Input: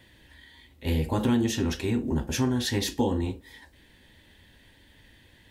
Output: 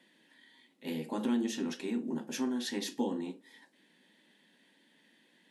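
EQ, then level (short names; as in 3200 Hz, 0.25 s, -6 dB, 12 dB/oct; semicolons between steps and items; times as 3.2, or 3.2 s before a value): brick-wall FIR band-pass 160–12000 Hz; bell 240 Hz +2.5 dB; -8.5 dB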